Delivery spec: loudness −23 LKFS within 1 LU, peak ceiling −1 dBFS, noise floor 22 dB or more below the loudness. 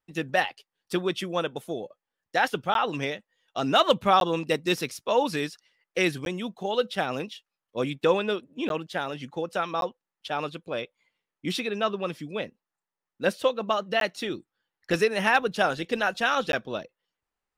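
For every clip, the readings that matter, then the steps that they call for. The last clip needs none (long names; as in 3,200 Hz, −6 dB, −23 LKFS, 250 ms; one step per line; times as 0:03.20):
number of dropouts 7; longest dropout 12 ms; integrated loudness −27.5 LKFS; sample peak −8.5 dBFS; target loudness −23.0 LKFS
→ repair the gap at 0:02.74/0:04.20/0:06.25/0:08.69/0:09.81/0:14.00/0:16.52, 12 ms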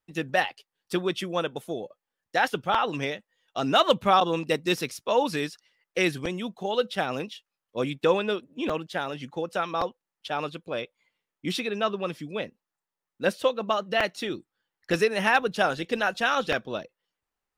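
number of dropouts 0; integrated loudness −27.5 LKFS; sample peak −8.5 dBFS; target loudness −23.0 LKFS
→ level +4.5 dB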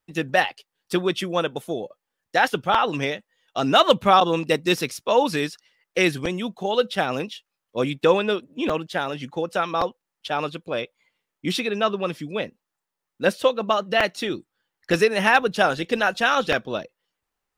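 integrated loudness −23.0 LKFS; sample peak −4.0 dBFS; background noise floor −84 dBFS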